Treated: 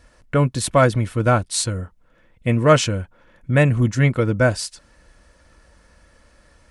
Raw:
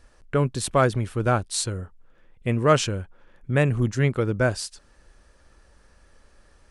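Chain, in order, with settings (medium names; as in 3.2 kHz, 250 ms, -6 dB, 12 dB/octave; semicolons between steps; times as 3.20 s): peaking EQ 2.1 kHz +3 dB 0.26 oct; comb of notches 400 Hz; trim +5.5 dB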